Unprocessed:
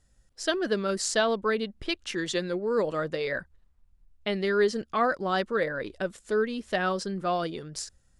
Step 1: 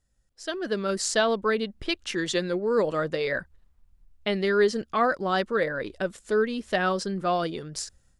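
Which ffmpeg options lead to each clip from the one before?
-af "dynaudnorm=f=450:g=3:m=11dB,volume=-8dB"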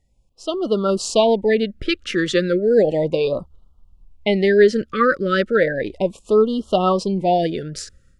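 -af "highshelf=f=4.5k:g=-11.5,afftfilt=real='re*(1-between(b*sr/1024,790*pow(2000/790,0.5+0.5*sin(2*PI*0.34*pts/sr))/1.41,790*pow(2000/790,0.5+0.5*sin(2*PI*0.34*pts/sr))*1.41))':imag='im*(1-between(b*sr/1024,790*pow(2000/790,0.5+0.5*sin(2*PI*0.34*pts/sr))/1.41,790*pow(2000/790,0.5+0.5*sin(2*PI*0.34*pts/sr))*1.41))':win_size=1024:overlap=0.75,volume=9dB"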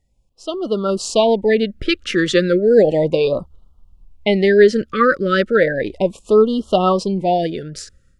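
-af "dynaudnorm=f=200:g=13:m=11.5dB,volume=-1dB"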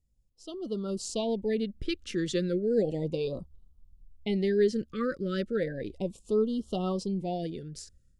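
-af "equalizer=f=1.3k:w=0.42:g=-14.5,bandreject=f=610:w=12,volume=-8dB"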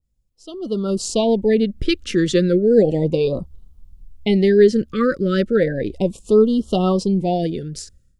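-af "dynaudnorm=f=260:g=5:m=11.5dB,adynamicequalizer=threshold=0.0141:dfrequency=2500:dqfactor=0.7:tfrequency=2500:tqfactor=0.7:attack=5:release=100:ratio=0.375:range=2.5:mode=cutabove:tftype=highshelf,volume=1.5dB"

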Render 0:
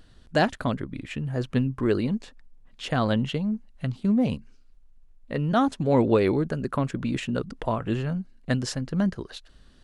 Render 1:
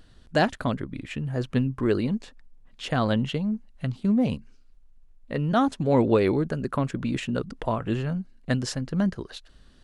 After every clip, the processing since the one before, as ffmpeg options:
-af anull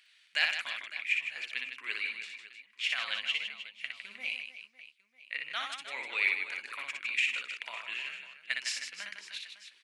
-filter_complex "[0:a]highpass=f=2.3k:t=q:w=7.3,aeval=exprs='clip(val(0),-1,0.299)':c=same,asplit=2[a][b];[b]aecho=0:1:60|156|309.6|555.4|948.6:0.631|0.398|0.251|0.158|0.1[c];[a][c]amix=inputs=2:normalize=0,volume=-4.5dB"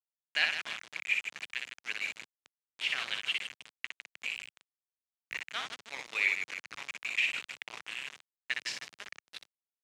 -af "aeval=exprs='val(0)*gte(abs(val(0)),0.0178)':c=same,highpass=120,lowpass=5.8k"

